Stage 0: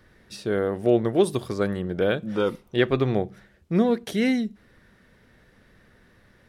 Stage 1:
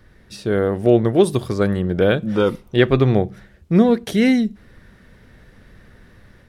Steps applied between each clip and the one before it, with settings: bass shelf 130 Hz +8.5 dB; level rider gain up to 4 dB; trim +2 dB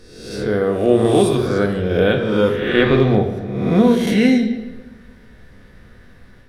reverse spectral sustain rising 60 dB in 0.90 s; reverberation RT60 1.2 s, pre-delay 4 ms, DRR 3 dB; trim -2.5 dB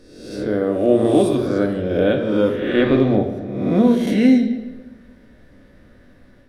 small resonant body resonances 290/570 Hz, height 11 dB, ringing for 35 ms; trim -6 dB

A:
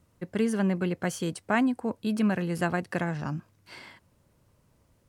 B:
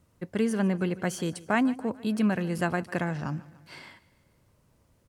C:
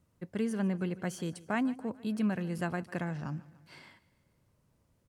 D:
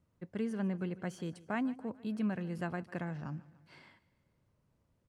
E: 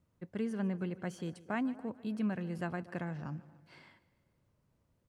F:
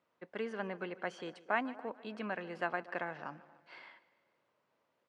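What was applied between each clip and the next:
feedback delay 148 ms, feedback 56%, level -20 dB
peaking EQ 160 Hz +3 dB 1.4 oct; trim -7.5 dB
low-pass 3.9 kHz 6 dB/octave; trim -3.5 dB
band-passed feedback delay 236 ms, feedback 41%, band-pass 470 Hz, level -19.5 dB
band-pass 550–3500 Hz; trim +6.5 dB

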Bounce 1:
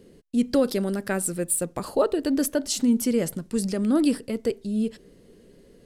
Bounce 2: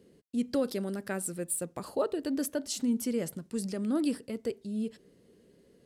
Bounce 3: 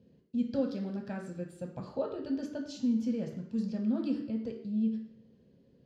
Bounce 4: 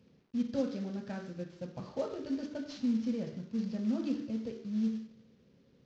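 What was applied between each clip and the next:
high-pass 68 Hz; trim -8 dB
distance through air 220 m; reverberation RT60 0.70 s, pre-delay 3 ms, DRR 1.5 dB; trim -5.5 dB
CVSD coder 32 kbps; trim -1.5 dB

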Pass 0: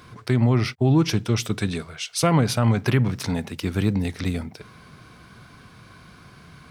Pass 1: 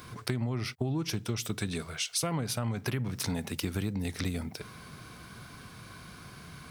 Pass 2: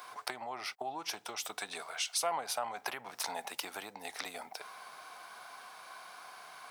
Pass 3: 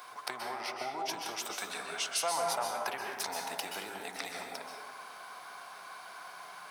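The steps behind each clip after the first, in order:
treble shelf 7.3 kHz +11 dB; compression 6:1, threshold -28 dBFS, peak gain reduction 13.5 dB; trim -1 dB
resonant high-pass 770 Hz, resonance Q 3.6; trim -2.5 dB
plate-style reverb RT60 1.3 s, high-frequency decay 0.45×, pre-delay 115 ms, DRR 0.5 dB

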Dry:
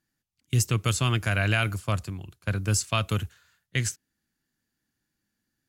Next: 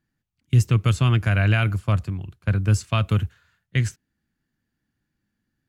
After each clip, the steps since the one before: tone controls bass +6 dB, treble -10 dB; trim +1.5 dB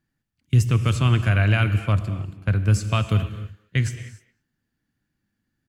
speakerphone echo 220 ms, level -18 dB; reverberation, pre-delay 3 ms, DRR 10.5 dB

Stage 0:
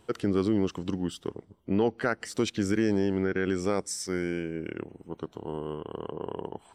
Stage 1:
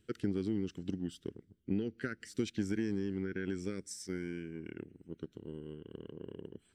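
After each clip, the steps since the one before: FFT filter 260 Hz 0 dB, 400 Hz -4 dB, 900 Hz -29 dB, 1.5 kHz -3 dB; transient shaper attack +5 dB, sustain +1 dB; trim -8.5 dB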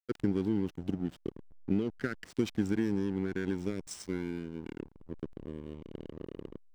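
hysteresis with a dead band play -42 dBFS; trim +4.5 dB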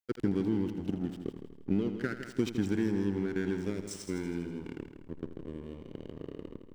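multi-head delay 81 ms, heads first and second, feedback 46%, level -12 dB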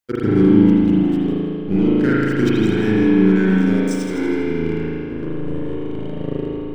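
reverberation RT60 2.6 s, pre-delay 37 ms, DRR -9 dB; trim +7.5 dB

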